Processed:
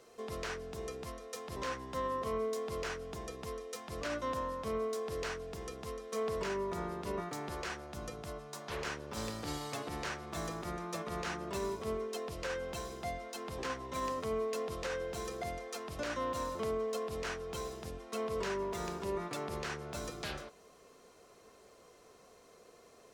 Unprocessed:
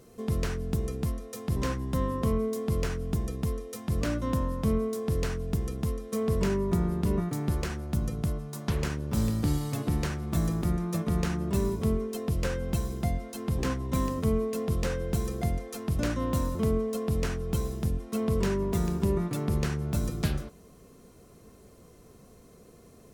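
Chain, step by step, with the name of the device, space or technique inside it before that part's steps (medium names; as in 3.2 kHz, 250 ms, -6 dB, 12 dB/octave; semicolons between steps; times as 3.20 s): DJ mixer with the lows and highs turned down (three-band isolator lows -19 dB, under 430 Hz, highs -12 dB, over 7.3 kHz; peak limiter -28.5 dBFS, peak gain reduction 10.5 dB); trim +1 dB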